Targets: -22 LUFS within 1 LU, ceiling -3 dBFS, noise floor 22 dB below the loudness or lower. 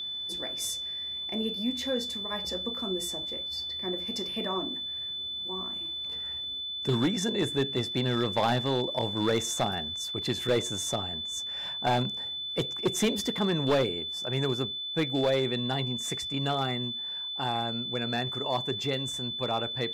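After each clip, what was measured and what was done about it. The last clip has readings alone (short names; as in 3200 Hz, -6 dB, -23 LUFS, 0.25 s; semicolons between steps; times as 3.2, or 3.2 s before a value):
clipped 0.7%; flat tops at -19.5 dBFS; steady tone 3500 Hz; tone level -33 dBFS; loudness -29.5 LUFS; peak -19.5 dBFS; loudness target -22.0 LUFS
-> clip repair -19.5 dBFS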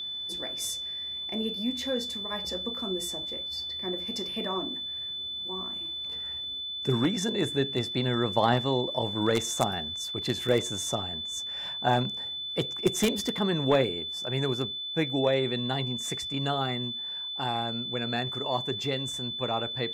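clipped 0.0%; steady tone 3500 Hz; tone level -33 dBFS
-> notch 3500 Hz, Q 30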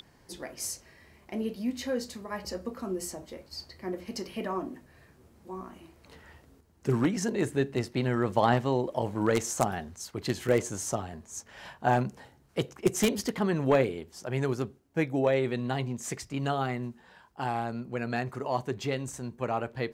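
steady tone none; loudness -31.0 LUFS; peak -10.0 dBFS; loudness target -22.0 LUFS
-> gain +9 dB; limiter -3 dBFS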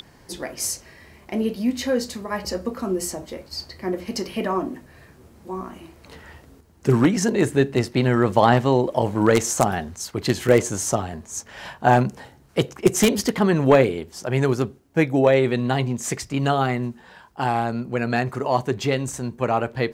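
loudness -22.0 LUFS; peak -3.0 dBFS; noise floor -51 dBFS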